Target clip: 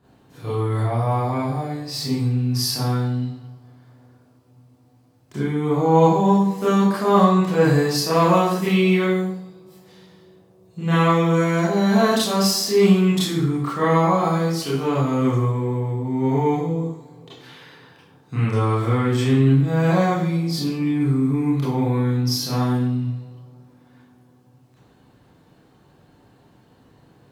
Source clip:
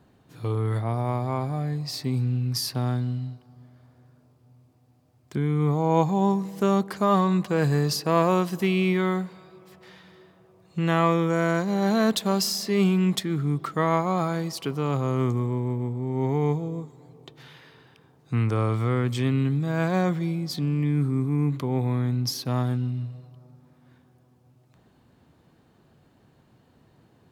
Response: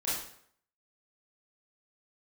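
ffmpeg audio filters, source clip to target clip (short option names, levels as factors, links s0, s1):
-filter_complex "[0:a]asettb=1/sr,asplit=3[s0][s1][s2];[s0]atrim=end=9.044[s3];[s1]atrim=start=9.04:end=10.88,asetpts=PTS-STARTPTS,afade=t=in:d=0.004:c=qsin,afade=t=out:st=1.836:d=0.004:c=qsin,equalizer=f=1600:t=o:w=2.3:g=-11.5[s4];[s2]atrim=start=10.876[s5];[s3][s4]acrossfade=d=0.004:c1=hsin:c2=qsin[s6];[s6][s5]acrossfade=d=0.004:c1=qsin:c2=hsin[s7];[1:a]atrim=start_sample=2205[s8];[s7][s8]afir=irnorm=-1:irlink=0"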